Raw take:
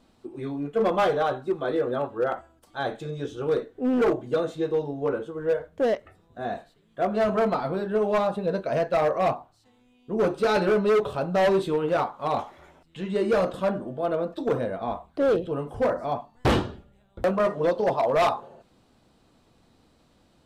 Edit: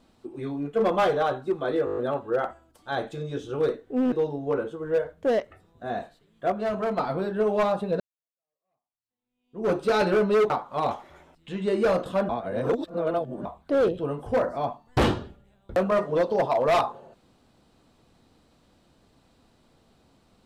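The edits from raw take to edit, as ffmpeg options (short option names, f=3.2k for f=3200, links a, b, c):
-filter_complex "[0:a]asplit=14[a][b][c][d][e][f][g][h][i][j][k][l][m][n];[a]atrim=end=1.872[o];[b]atrim=start=1.848:end=1.872[p];[c]atrim=start=1.848:end=1.872[q];[d]atrim=start=1.848:end=1.872[r];[e]atrim=start=1.848:end=1.872[s];[f]atrim=start=1.848:end=1.872[t];[g]atrim=start=1.848:end=4.002[u];[h]atrim=start=4.668:end=7.072[v];[i]atrim=start=7.068:end=7.532,asetpts=PTS-STARTPTS,volume=-4.5dB[w];[j]atrim=start=7.528:end=8.55,asetpts=PTS-STARTPTS,afade=t=out:st=1.018:d=0.004:c=hsin[x];[k]atrim=start=8.55:end=11.052,asetpts=PTS-STARTPTS,afade=t=in:d=1.71:c=exp[y];[l]atrim=start=11.978:end=13.772[z];[m]atrim=start=13.768:end=14.932,asetpts=PTS-STARTPTS,areverse[aa];[n]atrim=start=14.928[ab];[o][p]acrossfade=d=0.004:c1=hsin:c2=hsin[ac];[ac][q]acrossfade=d=0.004:c1=hsin:c2=hsin[ad];[ad][r]acrossfade=d=0.004:c1=hsin:c2=hsin[ae];[ae][s]acrossfade=d=0.004:c1=hsin:c2=hsin[af];[af][t]acrossfade=d=0.004:c1=hsin:c2=hsin[ag];[ag][u]acrossfade=d=0.004:c1=hsin:c2=hsin[ah];[ah][v]acrossfade=d=0.004:c1=hsin:c2=hsin[ai];[ai][w]acrossfade=d=0.004:c1=hsin:c2=hsin[aj];[x][y]concat=n=2:v=0:a=1[ak];[aj][ak]acrossfade=d=0.004:c1=hsin:c2=hsin[al];[al][z]acrossfade=d=0.004:c1=hsin:c2=hsin[am];[am][aa]acrossfade=d=0.004:c1=hsin:c2=hsin[an];[an][ab]acrossfade=d=0.004:c1=hsin:c2=hsin"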